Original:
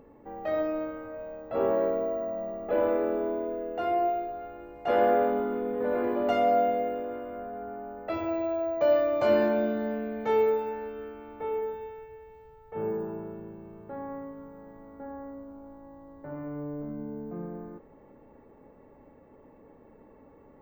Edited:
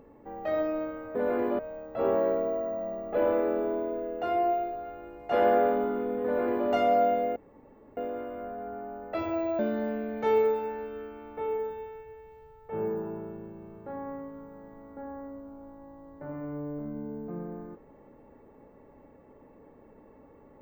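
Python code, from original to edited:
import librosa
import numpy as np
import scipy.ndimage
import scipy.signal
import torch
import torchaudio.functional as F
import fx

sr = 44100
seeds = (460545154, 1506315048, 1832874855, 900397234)

y = fx.edit(x, sr, fx.duplicate(start_s=5.8, length_s=0.44, to_s=1.15),
    fx.insert_room_tone(at_s=6.92, length_s=0.61),
    fx.cut(start_s=8.54, length_s=1.08), tone=tone)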